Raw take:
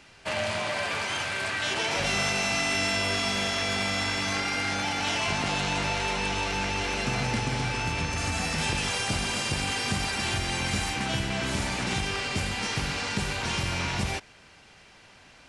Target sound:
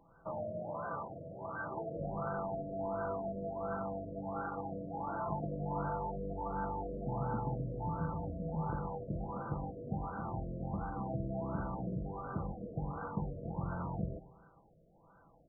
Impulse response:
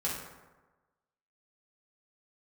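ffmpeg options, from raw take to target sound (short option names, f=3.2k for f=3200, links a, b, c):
-filter_complex "[0:a]bandreject=f=360:w=12,aecho=1:1:6:0.43,aeval=exprs='(mod(6.68*val(0)+1,2)-1)/6.68':c=same,asplit=2[a][b];[1:a]atrim=start_sample=2205[c];[b][c]afir=irnorm=-1:irlink=0,volume=-17dB[d];[a][d]amix=inputs=2:normalize=0,afftfilt=real='re*lt(b*sr/1024,650*pow(1600/650,0.5+0.5*sin(2*PI*1.4*pts/sr)))':imag='im*lt(b*sr/1024,650*pow(1600/650,0.5+0.5*sin(2*PI*1.4*pts/sr)))':win_size=1024:overlap=0.75,volume=-8dB"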